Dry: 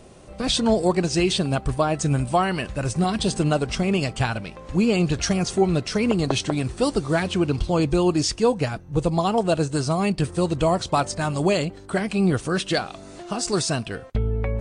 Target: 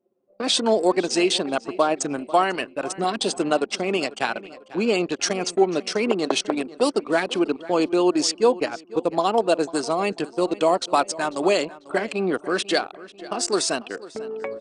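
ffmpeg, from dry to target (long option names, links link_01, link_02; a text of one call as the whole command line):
ffmpeg -i in.wav -filter_complex "[0:a]highpass=frequency=270:width=0.5412,highpass=frequency=270:width=1.3066,anlmdn=25.1,asplit=2[link_01][link_02];[link_02]adelay=494,lowpass=frequency=4200:poles=1,volume=-18dB,asplit=2[link_03][link_04];[link_04]adelay=494,lowpass=frequency=4200:poles=1,volume=0.39,asplit=2[link_05][link_06];[link_06]adelay=494,lowpass=frequency=4200:poles=1,volume=0.39[link_07];[link_03][link_05][link_07]amix=inputs=3:normalize=0[link_08];[link_01][link_08]amix=inputs=2:normalize=0,volume=2dB" out.wav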